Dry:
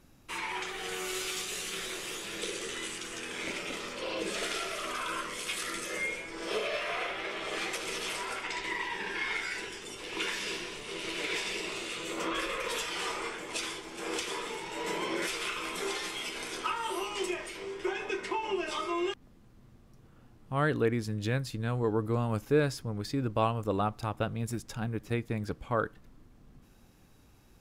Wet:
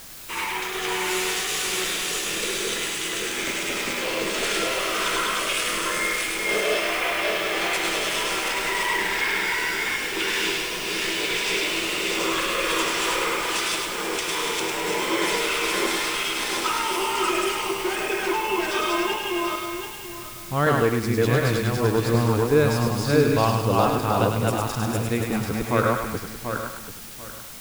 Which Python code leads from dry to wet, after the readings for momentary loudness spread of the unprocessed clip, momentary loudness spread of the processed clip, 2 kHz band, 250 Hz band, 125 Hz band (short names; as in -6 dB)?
7 LU, 6 LU, +11.0 dB, +9.5 dB, +9.0 dB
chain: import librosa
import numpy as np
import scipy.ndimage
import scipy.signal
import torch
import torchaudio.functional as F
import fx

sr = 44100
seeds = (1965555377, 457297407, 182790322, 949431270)

y = fx.reverse_delay_fb(x, sr, ms=369, feedback_pct=48, wet_db=-0.5)
y = fx.quant_dither(y, sr, seeds[0], bits=8, dither='triangular')
y = fx.echo_thinned(y, sr, ms=103, feedback_pct=56, hz=760.0, wet_db=-4)
y = y * 10.0 ** (6.0 / 20.0)